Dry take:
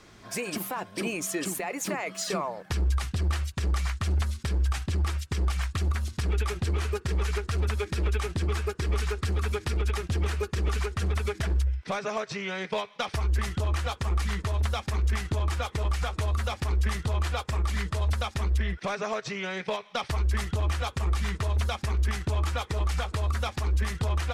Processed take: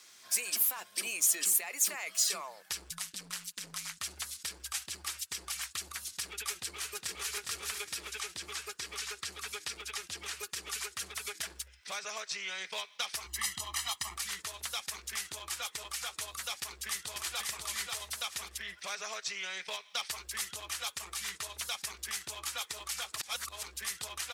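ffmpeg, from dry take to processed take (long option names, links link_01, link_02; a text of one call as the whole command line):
ffmpeg -i in.wav -filter_complex "[0:a]asettb=1/sr,asplit=3[link_01][link_02][link_03];[link_01]atrim=end=2.914[link_04];[link_02]atrim=start=2.91:end=3.98,asetpts=PTS-STARTPTS,afade=type=in:duration=0.004:curve=qsin,afade=type=out:start_time=1.066:duration=0.004:curve=qsin,aeval=exprs='val(0)*sin(2*PI*100*n/s)':channel_layout=same[link_05];[link_03]atrim=start=3.976[link_06];[link_04][link_05]acrossfade=duration=0.004:curve1=hsin:curve2=qsin[link_07];[link_07][link_06]acrossfade=duration=0.004:curve1=qsin:curve2=hsin,asplit=2[link_08][link_09];[link_09]afade=type=in:start_time=6.55:duration=0.01,afade=type=out:start_time=7.37:duration=0.01,aecho=0:1:410|820|1230|1640:0.630957|0.220835|0.0772923|0.0270523[link_10];[link_08][link_10]amix=inputs=2:normalize=0,asettb=1/sr,asplit=3[link_11][link_12][link_13];[link_11]atrim=end=7.984[link_14];[link_12]atrim=start=7.98:end=10.39,asetpts=PTS-STARTPTS,afade=type=in:duration=0.004:curve=qsin,afade=type=out:start_time=2.406:duration=0.004:curve=qsin,acrossover=split=7900[link_15][link_16];[link_16]acompressor=threshold=-58dB:ratio=4:attack=1:release=60[link_17];[link_15][link_17]amix=inputs=2:normalize=0[link_18];[link_13]atrim=start=10.386[link_19];[link_14][link_18]acrossfade=duration=0.004:curve1=hsin:curve2=qsin[link_20];[link_20][link_19]acrossfade=duration=0.004:curve1=qsin:curve2=hsin,asettb=1/sr,asplit=3[link_21][link_22][link_23];[link_21]atrim=end=13.264[link_24];[link_22]atrim=start=13.26:end=14.16,asetpts=PTS-STARTPTS,afade=type=in:duration=0.004:curve=qsin,afade=type=out:start_time=0.896:duration=0.004:curve=qsin,aecho=1:1:1:0.95,atrim=end_sample=39690[link_25];[link_23]atrim=start=14.156[link_26];[link_24][link_25]acrossfade=duration=0.004:curve1=hsin:curve2=qsin[link_27];[link_27][link_26]acrossfade=duration=0.004:curve1=qsin:curve2=hsin,asplit=2[link_28][link_29];[link_29]afade=type=in:start_time=16.54:duration=0.01,afade=type=out:start_time=17.4:duration=0.01,aecho=0:1:540|1080|1620|2160:0.668344|0.200503|0.060151|0.0180453[link_30];[link_28][link_30]amix=inputs=2:normalize=0,asplit=3[link_31][link_32][link_33];[link_31]atrim=end=23.162[link_34];[link_32]atrim=start=23.158:end=23.632,asetpts=PTS-STARTPTS,areverse[link_35];[link_33]atrim=start=23.628[link_36];[link_34][link_35]acrossfade=duration=0.004:curve1=hsin:curve2=hsin[link_37];[link_37][link_36]acrossfade=duration=0.004:curve1=hsin:curve2=hsin,aderivative,volume=6.5dB" out.wav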